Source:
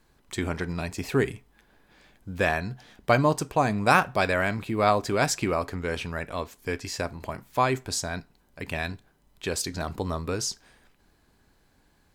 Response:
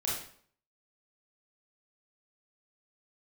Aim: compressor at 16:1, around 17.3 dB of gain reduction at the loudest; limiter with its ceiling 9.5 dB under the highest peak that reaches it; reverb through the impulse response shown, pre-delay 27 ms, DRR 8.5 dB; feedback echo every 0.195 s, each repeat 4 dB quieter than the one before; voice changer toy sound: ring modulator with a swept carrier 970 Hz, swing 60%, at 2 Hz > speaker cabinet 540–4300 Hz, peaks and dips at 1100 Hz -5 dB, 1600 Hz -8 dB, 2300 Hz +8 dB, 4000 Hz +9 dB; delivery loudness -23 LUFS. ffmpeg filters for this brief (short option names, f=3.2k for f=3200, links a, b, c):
-filter_complex "[0:a]acompressor=threshold=-32dB:ratio=16,alimiter=level_in=4.5dB:limit=-24dB:level=0:latency=1,volume=-4.5dB,aecho=1:1:195|390|585|780|975|1170|1365|1560|1755:0.631|0.398|0.25|0.158|0.0994|0.0626|0.0394|0.0249|0.0157,asplit=2[a][b];[1:a]atrim=start_sample=2205,adelay=27[c];[b][c]afir=irnorm=-1:irlink=0,volume=-13.5dB[d];[a][d]amix=inputs=2:normalize=0,aeval=exprs='val(0)*sin(2*PI*970*n/s+970*0.6/2*sin(2*PI*2*n/s))':c=same,highpass=540,equalizer=f=1.1k:t=q:w=4:g=-5,equalizer=f=1.6k:t=q:w=4:g=-8,equalizer=f=2.3k:t=q:w=4:g=8,equalizer=f=4k:t=q:w=4:g=9,lowpass=f=4.3k:w=0.5412,lowpass=f=4.3k:w=1.3066,volume=18.5dB"